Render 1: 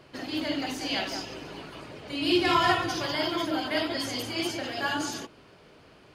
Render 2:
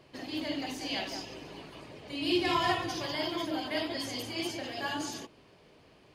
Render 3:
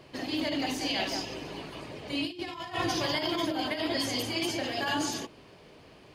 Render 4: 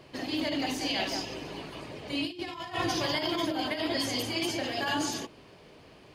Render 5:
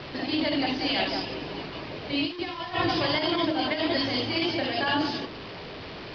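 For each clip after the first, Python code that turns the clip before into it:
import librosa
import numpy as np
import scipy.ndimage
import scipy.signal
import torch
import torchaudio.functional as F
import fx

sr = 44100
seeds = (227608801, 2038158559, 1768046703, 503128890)

y1 = fx.peak_eq(x, sr, hz=1400.0, db=-8.0, octaves=0.28)
y1 = F.gain(torch.from_numpy(y1), -4.5).numpy()
y2 = fx.over_compress(y1, sr, threshold_db=-34.0, ratio=-0.5)
y2 = F.gain(torch.from_numpy(y2), 4.0).numpy()
y3 = y2
y4 = fx.delta_mod(y3, sr, bps=64000, step_db=-37.5)
y4 = scipy.signal.sosfilt(scipy.signal.butter(12, 5100.0, 'lowpass', fs=sr, output='sos'), y4)
y4 = F.gain(torch.from_numpy(y4), 4.5).numpy()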